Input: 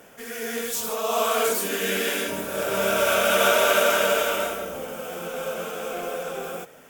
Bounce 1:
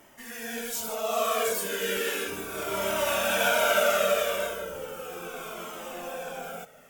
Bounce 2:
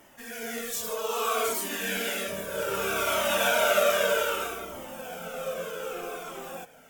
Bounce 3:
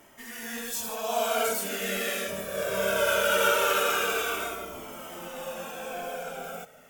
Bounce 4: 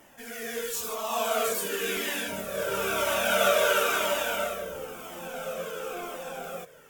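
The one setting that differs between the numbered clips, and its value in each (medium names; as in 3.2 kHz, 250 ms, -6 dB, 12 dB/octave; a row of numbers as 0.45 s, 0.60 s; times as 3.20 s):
Shepard-style flanger, rate: 0.35 Hz, 0.63 Hz, 0.2 Hz, 0.98 Hz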